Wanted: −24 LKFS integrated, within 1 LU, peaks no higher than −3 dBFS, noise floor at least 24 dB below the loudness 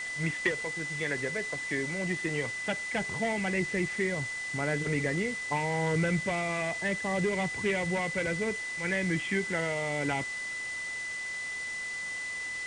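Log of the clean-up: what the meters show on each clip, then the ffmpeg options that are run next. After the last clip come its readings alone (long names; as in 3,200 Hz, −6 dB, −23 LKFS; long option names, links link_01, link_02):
interfering tone 2,000 Hz; level of the tone −34 dBFS; background noise floor −37 dBFS; target noise floor −55 dBFS; integrated loudness −31.0 LKFS; sample peak −16.0 dBFS; target loudness −24.0 LKFS
→ -af "bandreject=frequency=2000:width=30"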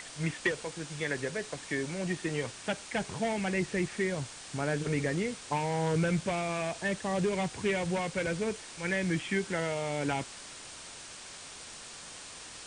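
interfering tone none found; background noise floor −47 dBFS; target noise floor −57 dBFS
→ -af "afftdn=noise_reduction=10:noise_floor=-47"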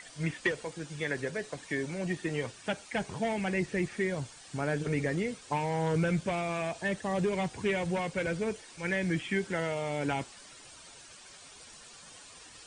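background noise floor −52 dBFS; target noise floor −57 dBFS
→ -af "afftdn=noise_reduction=6:noise_floor=-52"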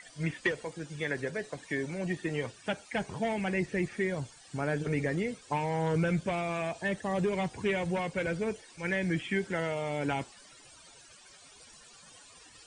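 background noise floor −55 dBFS; target noise floor −57 dBFS
→ -af "afftdn=noise_reduction=6:noise_floor=-55"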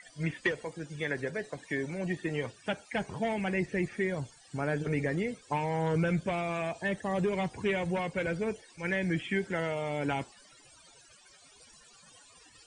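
background noise floor −58 dBFS; integrated loudness −33.0 LKFS; sample peak −16.5 dBFS; target loudness −24.0 LKFS
→ -af "volume=9dB"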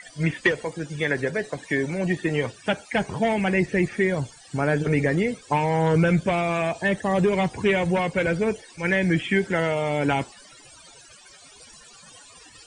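integrated loudness −24.0 LKFS; sample peak −7.5 dBFS; background noise floor −49 dBFS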